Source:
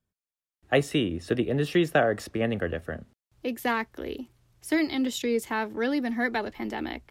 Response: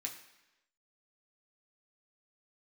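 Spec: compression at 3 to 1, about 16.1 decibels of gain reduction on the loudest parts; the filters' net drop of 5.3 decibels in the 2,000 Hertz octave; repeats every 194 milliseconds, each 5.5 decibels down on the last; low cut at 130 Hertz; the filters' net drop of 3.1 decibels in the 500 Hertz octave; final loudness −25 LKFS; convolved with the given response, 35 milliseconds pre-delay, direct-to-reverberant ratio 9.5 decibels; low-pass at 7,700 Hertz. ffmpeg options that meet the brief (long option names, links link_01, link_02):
-filter_complex "[0:a]highpass=130,lowpass=7700,equalizer=frequency=500:width_type=o:gain=-3.5,equalizer=frequency=2000:width_type=o:gain=-6.5,acompressor=threshold=-43dB:ratio=3,aecho=1:1:194|388|582|776|970|1164|1358:0.531|0.281|0.149|0.079|0.0419|0.0222|0.0118,asplit=2[link_01][link_02];[1:a]atrim=start_sample=2205,adelay=35[link_03];[link_02][link_03]afir=irnorm=-1:irlink=0,volume=-8dB[link_04];[link_01][link_04]amix=inputs=2:normalize=0,volume=16.5dB"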